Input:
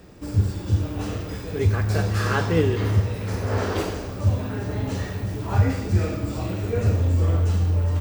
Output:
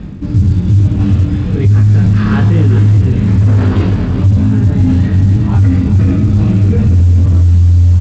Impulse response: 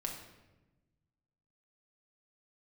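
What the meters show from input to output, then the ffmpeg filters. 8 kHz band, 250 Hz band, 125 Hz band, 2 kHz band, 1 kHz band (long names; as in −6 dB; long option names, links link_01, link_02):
can't be measured, +15.5 dB, +14.5 dB, +3.0 dB, +3.0 dB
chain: -af "aecho=1:1:392:0.376,asoftclip=type=tanh:threshold=-15.5dB,lowshelf=frequency=320:width_type=q:width=1.5:gain=12,flanger=delay=19:depth=4.6:speed=1.1,lowpass=frequency=4100:width=0.5412,lowpass=frequency=4100:width=1.3066,alimiter=limit=-12dB:level=0:latency=1:release=14,areverse,acompressor=mode=upward:threshold=-22dB:ratio=2.5,areverse,volume=9dB" -ar 16000 -c:a pcm_mulaw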